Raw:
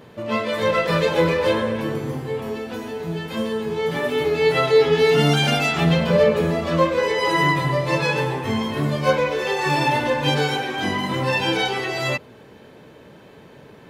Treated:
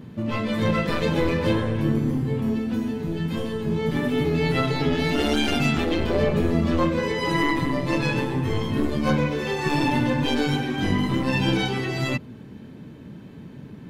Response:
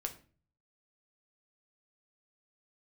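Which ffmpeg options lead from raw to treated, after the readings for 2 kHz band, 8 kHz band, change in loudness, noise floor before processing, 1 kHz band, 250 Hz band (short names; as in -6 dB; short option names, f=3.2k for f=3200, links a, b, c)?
-5.0 dB, -4.5 dB, -3.0 dB, -46 dBFS, -6.0 dB, +2.5 dB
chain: -af "lowshelf=f=350:t=q:w=1.5:g=11.5,aeval=exprs='(tanh(1.12*val(0)+0.5)-tanh(0.5))/1.12':c=same,afftfilt=real='re*lt(hypot(re,im),1.41)':imag='im*lt(hypot(re,im),1.41)':win_size=1024:overlap=0.75,volume=-2.5dB"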